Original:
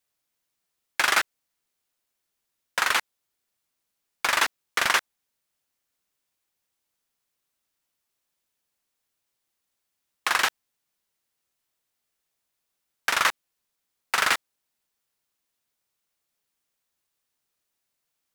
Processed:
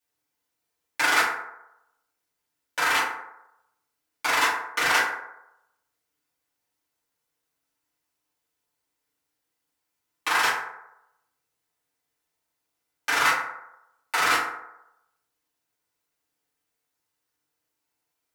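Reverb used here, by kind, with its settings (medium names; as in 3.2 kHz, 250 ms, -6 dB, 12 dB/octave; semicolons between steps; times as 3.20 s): FDN reverb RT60 0.86 s, low-frequency decay 0.7×, high-frequency decay 0.4×, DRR -9.5 dB; trim -8 dB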